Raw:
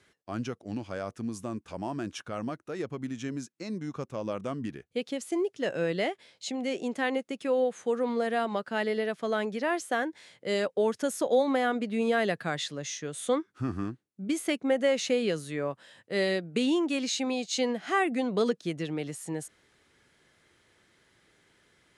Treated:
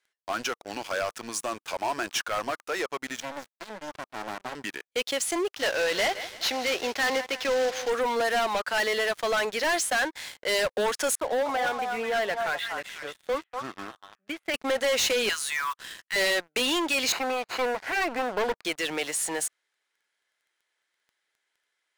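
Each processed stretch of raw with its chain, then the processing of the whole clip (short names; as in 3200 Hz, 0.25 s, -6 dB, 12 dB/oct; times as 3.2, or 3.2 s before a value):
3.2–4.55 HPF 190 Hz 24 dB/oct + high shelf 2300 Hz -10 dB + running maximum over 65 samples
5.55–7.9 CVSD 32 kbps + feedback echo 0.165 s, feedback 52%, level -19 dB
11.15–14.54 flange 1.2 Hz, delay 0.4 ms, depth 2.2 ms, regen +67% + air absorption 480 m + delay with a stepping band-pass 0.243 s, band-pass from 940 Hz, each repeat 1.4 oct, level -4 dB
15.29–16.16 block floating point 7-bit + brick-wall FIR high-pass 960 Hz
17.12–18.65 minimum comb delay 0.42 ms + LPF 1500 Hz
whole clip: HPF 820 Hz 12 dB/oct; sample leveller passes 5; notch 1200 Hz, Q 16; gain -2.5 dB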